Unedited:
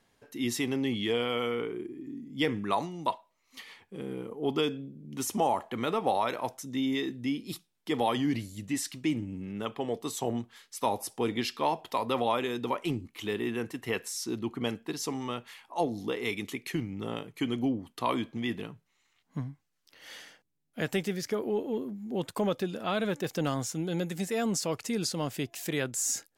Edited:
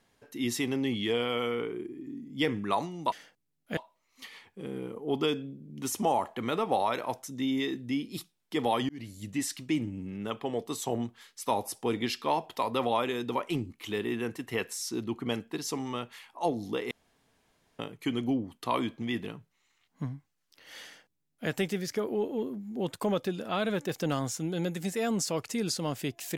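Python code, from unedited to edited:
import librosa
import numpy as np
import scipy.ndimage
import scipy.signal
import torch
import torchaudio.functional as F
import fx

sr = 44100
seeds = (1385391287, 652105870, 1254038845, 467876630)

y = fx.edit(x, sr, fx.fade_in_span(start_s=8.24, length_s=0.34),
    fx.room_tone_fill(start_s=16.26, length_s=0.88),
    fx.duplicate(start_s=20.19, length_s=0.65, to_s=3.12), tone=tone)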